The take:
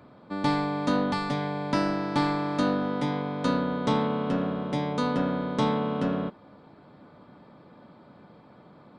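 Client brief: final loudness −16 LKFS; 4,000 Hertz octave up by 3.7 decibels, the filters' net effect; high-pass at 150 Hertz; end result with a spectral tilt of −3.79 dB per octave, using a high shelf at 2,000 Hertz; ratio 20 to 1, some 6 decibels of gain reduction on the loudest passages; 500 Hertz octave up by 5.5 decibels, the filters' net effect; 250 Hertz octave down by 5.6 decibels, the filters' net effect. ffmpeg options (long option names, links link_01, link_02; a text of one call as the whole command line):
ffmpeg -i in.wav -af "highpass=150,equalizer=frequency=250:width_type=o:gain=-8.5,equalizer=frequency=500:width_type=o:gain=8.5,highshelf=frequency=2000:gain=-3.5,equalizer=frequency=4000:width_type=o:gain=7.5,acompressor=threshold=-25dB:ratio=20,volume=14.5dB" out.wav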